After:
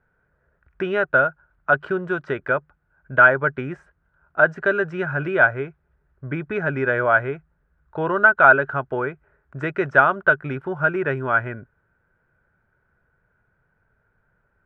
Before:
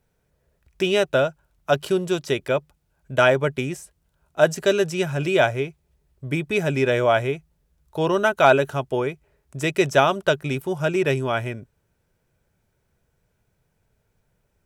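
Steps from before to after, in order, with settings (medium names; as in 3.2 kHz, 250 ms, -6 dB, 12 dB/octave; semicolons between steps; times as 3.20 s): in parallel at -1 dB: compression, threshold -26 dBFS, peak gain reduction 15.5 dB; on the sum: resonant low-pass 1.5 kHz, resonance Q 5.6; trim -6 dB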